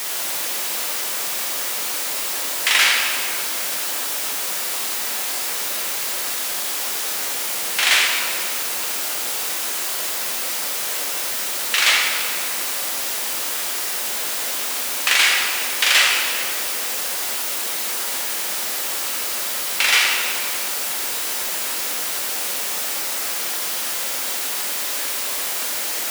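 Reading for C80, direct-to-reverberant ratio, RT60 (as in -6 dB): 2.5 dB, -2.0 dB, 2.4 s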